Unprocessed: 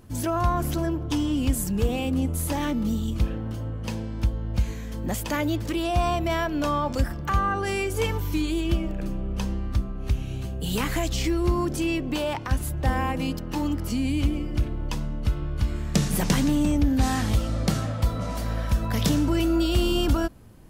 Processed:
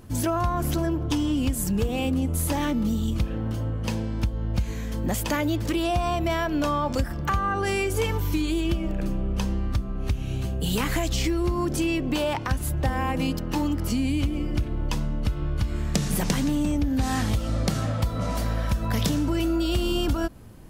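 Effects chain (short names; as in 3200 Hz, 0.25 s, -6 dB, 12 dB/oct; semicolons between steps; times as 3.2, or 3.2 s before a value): compressor, threshold -24 dBFS, peak gain reduction 8 dB; gain +3.5 dB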